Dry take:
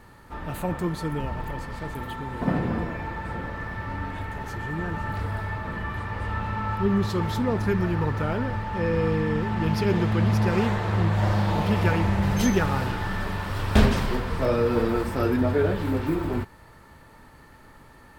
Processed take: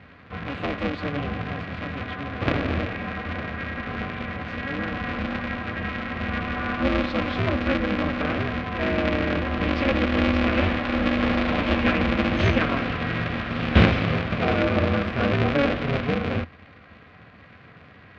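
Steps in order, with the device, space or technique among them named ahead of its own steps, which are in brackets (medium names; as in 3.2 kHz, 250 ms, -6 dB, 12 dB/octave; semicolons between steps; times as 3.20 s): ring modulator pedal into a guitar cabinet (polarity switched at an audio rate 140 Hz; cabinet simulation 79–3700 Hz, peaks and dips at 84 Hz +8 dB, 370 Hz -7 dB, 890 Hz -9 dB, 2.4 kHz +5 dB); trim +2.5 dB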